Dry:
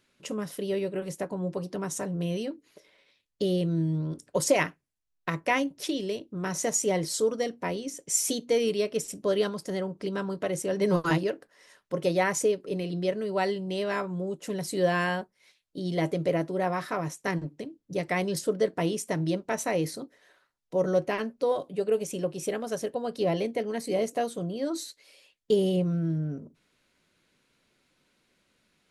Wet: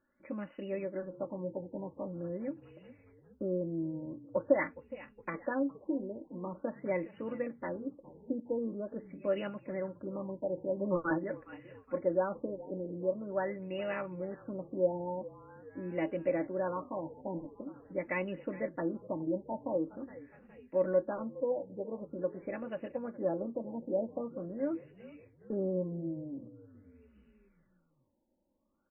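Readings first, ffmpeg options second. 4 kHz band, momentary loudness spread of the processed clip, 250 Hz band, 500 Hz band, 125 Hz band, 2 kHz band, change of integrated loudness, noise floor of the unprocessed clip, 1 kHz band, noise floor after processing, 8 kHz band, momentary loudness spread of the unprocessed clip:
under -20 dB, 12 LU, -6.5 dB, -6.5 dB, -12.0 dB, -10.0 dB, -7.5 dB, -75 dBFS, -9.5 dB, -71 dBFS, under -40 dB, 9 LU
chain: -filter_complex "[0:a]aecho=1:1:3.5:0.86,asplit=5[a][b][c][d][e];[b]adelay=414,afreqshift=-36,volume=-18dB[f];[c]adelay=828,afreqshift=-72,volume=-23.7dB[g];[d]adelay=1242,afreqshift=-108,volume=-29.4dB[h];[e]adelay=1656,afreqshift=-144,volume=-35dB[i];[a][f][g][h][i]amix=inputs=5:normalize=0,afftfilt=real='re*lt(b*sr/1024,970*pow(3000/970,0.5+0.5*sin(2*PI*0.45*pts/sr)))':imag='im*lt(b*sr/1024,970*pow(3000/970,0.5+0.5*sin(2*PI*0.45*pts/sr)))':win_size=1024:overlap=0.75,volume=-8dB"

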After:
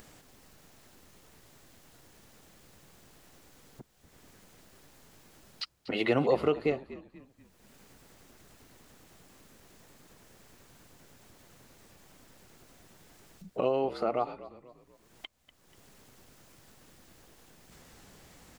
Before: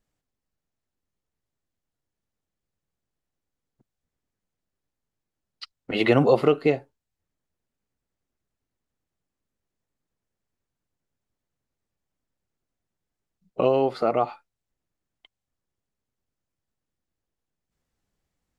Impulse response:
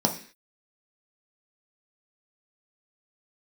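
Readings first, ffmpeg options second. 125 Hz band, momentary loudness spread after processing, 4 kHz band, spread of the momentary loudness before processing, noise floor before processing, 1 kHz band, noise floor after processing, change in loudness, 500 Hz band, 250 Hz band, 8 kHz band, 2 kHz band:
-9.5 dB, 23 LU, -4.5 dB, 12 LU, under -85 dBFS, -7.0 dB, -65 dBFS, -8.5 dB, -7.5 dB, -7.5 dB, n/a, -6.5 dB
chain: -filter_complex "[0:a]lowshelf=f=100:g=-9,acompressor=mode=upward:threshold=-21dB:ratio=2.5,asplit=2[a][b];[b]asplit=4[c][d][e][f];[c]adelay=242,afreqshift=-62,volume=-16.5dB[g];[d]adelay=484,afreqshift=-124,volume=-24.2dB[h];[e]adelay=726,afreqshift=-186,volume=-32dB[i];[f]adelay=968,afreqshift=-248,volume=-39.7dB[j];[g][h][i][j]amix=inputs=4:normalize=0[k];[a][k]amix=inputs=2:normalize=0,volume=-7dB"

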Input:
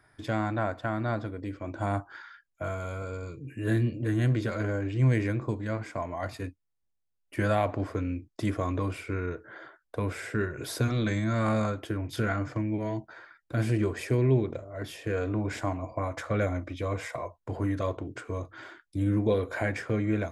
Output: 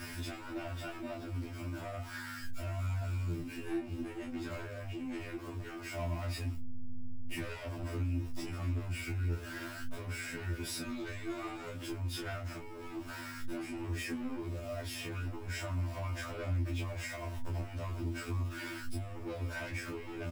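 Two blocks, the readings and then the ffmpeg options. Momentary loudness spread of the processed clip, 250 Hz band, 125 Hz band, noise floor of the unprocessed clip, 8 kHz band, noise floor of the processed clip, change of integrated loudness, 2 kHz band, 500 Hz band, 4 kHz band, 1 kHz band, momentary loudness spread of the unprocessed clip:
6 LU, -10.0 dB, -8.5 dB, -78 dBFS, -1.0 dB, -45 dBFS, -9.0 dB, -6.0 dB, -12.5 dB, -1.0 dB, -11.0 dB, 12 LU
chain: -filter_complex "[0:a]aeval=exprs='val(0)+0.5*0.00944*sgn(val(0))':c=same,aecho=1:1:3.2:0.45,asoftclip=type=tanh:threshold=-28dB,aeval=exprs='val(0)+0.00708*(sin(2*PI*50*n/s)+sin(2*PI*2*50*n/s)/2+sin(2*PI*3*50*n/s)/3+sin(2*PI*4*50*n/s)/4+sin(2*PI*5*50*n/s)/5)':c=same,acompressor=threshold=-37dB:ratio=6,asplit=2[a][b];[b]aecho=0:1:12|24:0.422|0.562[c];[a][c]amix=inputs=2:normalize=0,flanger=delay=6.6:depth=7.2:regen=-50:speed=0.59:shape=sinusoidal,equalizer=f=500:t=o:w=0.51:g=-6,afftfilt=real='re*2*eq(mod(b,4),0)':imag='im*2*eq(mod(b,4),0)':win_size=2048:overlap=0.75,volume=5.5dB"

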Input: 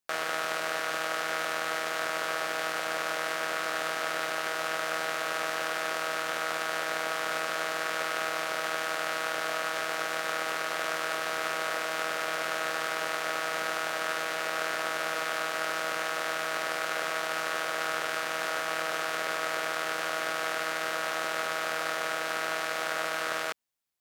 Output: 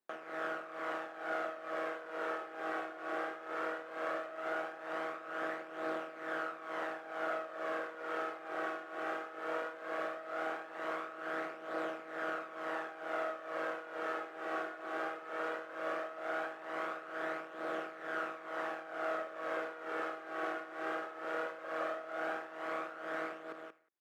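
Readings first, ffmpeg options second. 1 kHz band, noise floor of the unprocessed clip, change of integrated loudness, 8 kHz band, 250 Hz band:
-8.0 dB, -33 dBFS, -9.5 dB, under -25 dB, -1.5 dB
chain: -filter_complex "[0:a]asoftclip=type=tanh:threshold=-21.5dB,alimiter=level_in=2.5dB:limit=-24dB:level=0:latency=1,volume=-2.5dB,equalizer=f=340:w=5.6:g=7.5,acrossover=split=4300[a][b];[b]acompressor=threshold=-56dB:ratio=4:attack=1:release=60[c];[a][c]amix=inputs=2:normalize=0,volume=32.5dB,asoftclip=hard,volume=-32.5dB,highpass=77,acrossover=split=220 2000:gain=0.0631 1 0.2[d][e][f];[d][e][f]amix=inputs=3:normalize=0,aecho=1:1:181|362:0.299|0.0537,tremolo=f=2.2:d=0.77,flanger=delay=0.2:depth=2.6:regen=61:speed=0.17:shape=triangular,volume=8.5dB"

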